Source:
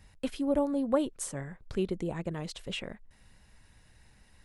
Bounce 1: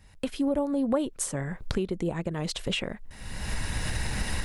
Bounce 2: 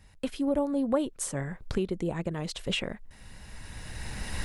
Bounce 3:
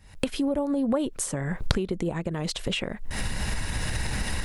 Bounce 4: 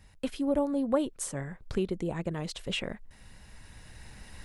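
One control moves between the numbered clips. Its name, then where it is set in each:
recorder AGC, rising by: 37 dB/s, 14 dB/s, 91 dB/s, 5.4 dB/s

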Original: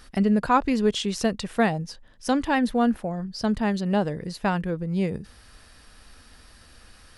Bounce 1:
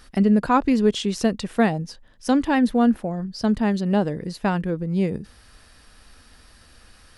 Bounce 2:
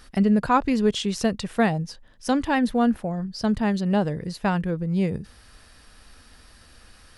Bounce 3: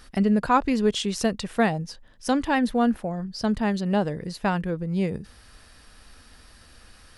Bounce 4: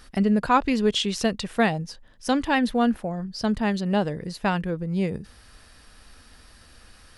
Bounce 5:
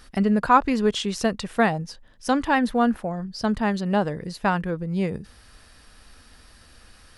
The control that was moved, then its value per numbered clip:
dynamic bell, frequency: 280 Hz, 110 Hz, 9.9 kHz, 3.2 kHz, 1.2 kHz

